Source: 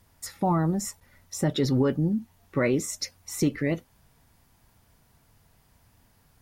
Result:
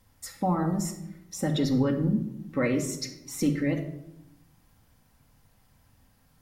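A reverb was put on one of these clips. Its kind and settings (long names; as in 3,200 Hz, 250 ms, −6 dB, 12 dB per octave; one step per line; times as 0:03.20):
rectangular room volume 2,400 cubic metres, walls furnished, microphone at 2.1 metres
level −3.5 dB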